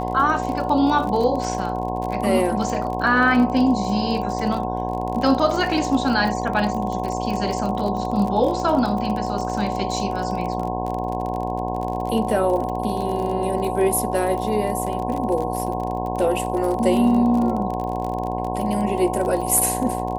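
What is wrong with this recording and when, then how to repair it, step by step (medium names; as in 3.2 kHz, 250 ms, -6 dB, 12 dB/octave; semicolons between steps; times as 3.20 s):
buzz 60 Hz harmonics 18 -27 dBFS
crackle 35 per s -26 dBFS
whine 740 Hz -27 dBFS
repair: de-click; de-hum 60 Hz, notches 18; band-stop 740 Hz, Q 30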